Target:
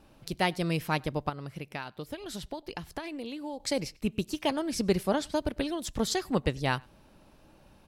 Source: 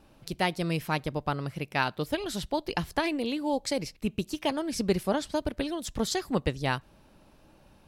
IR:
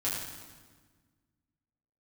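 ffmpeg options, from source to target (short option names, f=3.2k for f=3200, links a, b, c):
-filter_complex "[0:a]asettb=1/sr,asplit=3[a][b][c];[a]atrim=end=1.294[d];[b]atrim=start=1.29:end=3.6,asetpts=PTS-STARTPTS,afade=t=in:d=0.004:c=qsin,afade=t=out:st=2.306:d=0.004:c=qsin,acompressor=threshold=-35dB:ratio=6[e];[c]atrim=start=3.596[f];[d][e]acrossfade=d=0.004:c1=hsin:c2=qsin[g];[g][f]acrossfade=d=0.004:c1=qsin:c2=hsin,asplit=2[h][i];[i]adelay=99.13,volume=-28dB,highshelf=f=4k:g=-2.23[j];[h][j]amix=inputs=2:normalize=0"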